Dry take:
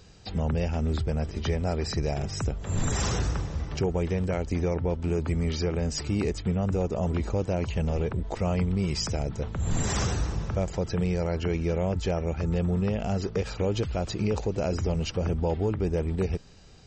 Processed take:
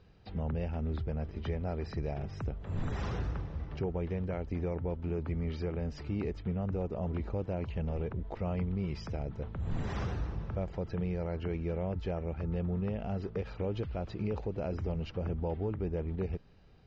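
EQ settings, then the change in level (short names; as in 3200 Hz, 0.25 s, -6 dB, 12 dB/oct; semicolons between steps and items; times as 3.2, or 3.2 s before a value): air absorption 290 m; -7.0 dB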